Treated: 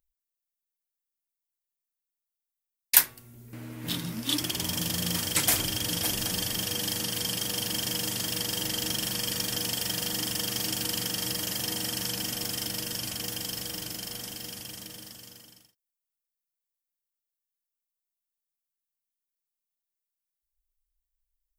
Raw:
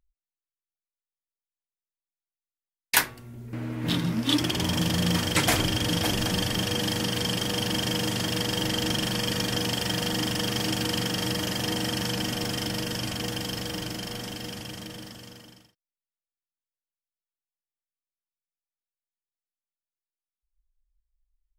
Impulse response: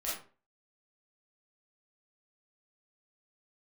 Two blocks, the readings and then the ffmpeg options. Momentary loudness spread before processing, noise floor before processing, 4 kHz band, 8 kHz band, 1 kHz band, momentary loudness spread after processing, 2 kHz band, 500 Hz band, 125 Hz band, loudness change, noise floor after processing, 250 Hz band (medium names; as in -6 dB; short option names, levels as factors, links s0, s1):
12 LU, under -85 dBFS, -2.5 dB, +3.0 dB, -7.5 dB, 13 LU, -5.5 dB, -8.5 dB, -8.5 dB, -1.5 dB, under -85 dBFS, -8.5 dB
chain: -af "aemphasis=mode=production:type=75kf,volume=0.376"